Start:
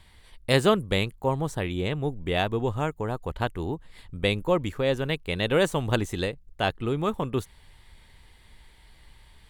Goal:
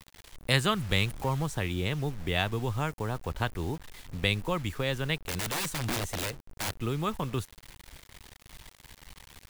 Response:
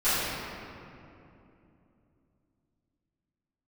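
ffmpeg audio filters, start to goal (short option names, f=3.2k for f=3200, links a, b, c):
-filter_complex "[0:a]asettb=1/sr,asplit=3[a][b][c];[a]atrim=end=0.764[d];[b]atrim=start=0.76:end=1.46,asetpts=PTS-STARTPTS,afade=t=in:d=0.004:c=qsin,afade=t=out:st=0.696:d=0.004:c=qsin,aeval=exprs='val(0)+0.5*0.0168*sgn(val(0))':c=same[e];[c]atrim=start=1.456[f];[d][e]acrossfade=d=0.004:c1=hsin:c2=qsin[g];[g][f]acrossfade=d=0.004:c1=qsin:c2=hsin,acrossover=split=180|1000|4100[h][i][j][k];[i]acompressor=threshold=-34dB:ratio=5[l];[h][l][j][k]amix=inputs=4:normalize=0,acrusher=bits=7:mix=0:aa=0.000001,asettb=1/sr,asplit=3[m][n][o];[m]atrim=end=5.264[p];[n]atrim=start=5.26:end=6.76,asetpts=PTS-STARTPTS,afade=t=in:d=0.004:c=qsin,afade=t=out:st=1.496:d=0.004:c=qsin,aeval=exprs='(mod(20*val(0)+1,2)-1)/20':c=same[q];[o]atrim=start=6.756[r];[p][q]acrossfade=d=0.004:c1=hsin:c2=qsin[s];[s][r]acrossfade=d=0.004:c1=qsin:c2=hsin"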